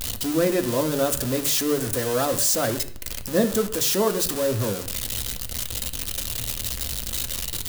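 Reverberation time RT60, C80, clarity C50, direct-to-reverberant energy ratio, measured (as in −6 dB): 0.55 s, 16.5 dB, 13.5 dB, 6.0 dB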